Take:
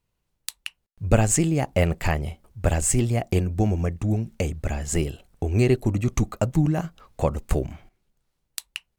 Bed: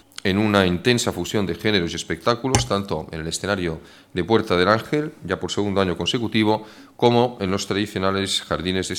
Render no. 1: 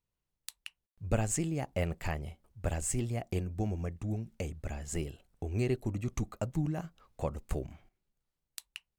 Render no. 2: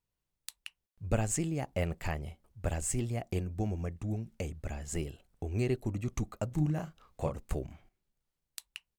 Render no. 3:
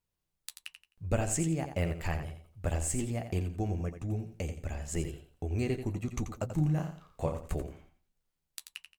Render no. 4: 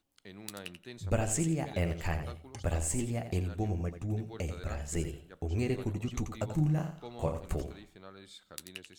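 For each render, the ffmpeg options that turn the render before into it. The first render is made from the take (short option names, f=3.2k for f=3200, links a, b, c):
-af "volume=-11.5dB"
-filter_complex "[0:a]asplit=3[a][b][c];[a]afade=t=out:st=6.5:d=0.02[d];[b]asplit=2[e][f];[f]adelay=33,volume=-4.5dB[g];[e][g]amix=inputs=2:normalize=0,afade=t=in:st=6.5:d=0.02,afade=t=out:st=7.38:d=0.02[h];[c]afade=t=in:st=7.38:d=0.02[i];[d][h][i]amix=inputs=3:normalize=0"
-filter_complex "[0:a]asplit=2[a][b];[b]adelay=12,volume=-10dB[c];[a][c]amix=inputs=2:normalize=0,aecho=1:1:86|172|258:0.355|0.0923|0.024"
-filter_complex "[1:a]volume=-29.5dB[a];[0:a][a]amix=inputs=2:normalize=0"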